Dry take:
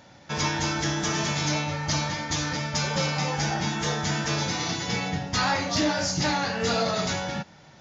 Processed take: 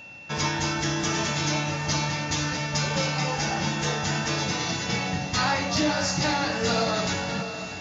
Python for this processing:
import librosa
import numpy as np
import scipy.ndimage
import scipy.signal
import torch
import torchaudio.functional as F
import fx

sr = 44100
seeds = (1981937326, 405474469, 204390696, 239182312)

y = x + 10.0 ** (-42.0 / 20.0) * np.sin(2.0 * np.pi * 2700.0 * np.arange(len(x)) / sr)
y = fx.echo_diffused(y, sr, ms=607, feedback_pct=44, wet_db=-10)